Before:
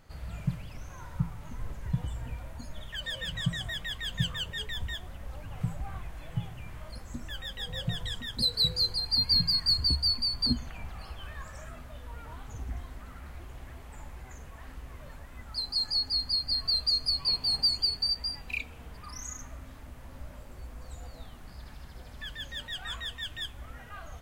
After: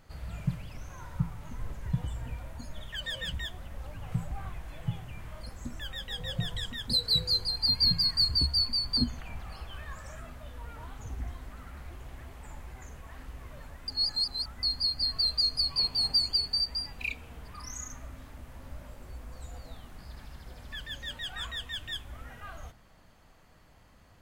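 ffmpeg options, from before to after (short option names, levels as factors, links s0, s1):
-filter_complex "[0:a]asplit=4[s0][s1][s2][s3];[s0]atrim=end=3.342[s4];[s1]atrim=start=4.828:end=15.372[s5];[s2]atrim=start=15.368:end=16.122,asetpts=PTS-STARTPTS,areverse[s6];[s3]atrim=start=16.118[s7];[s4][s5]acrossfade=d=0.004:c1=hsin:c2=hsin[s8];[s8][s6]acrossfade=d=0.004:c1=hsin:c2=hsin[s9];[s9][s7]acrossfade=d=0.004:c1=hsin:c2=hsin"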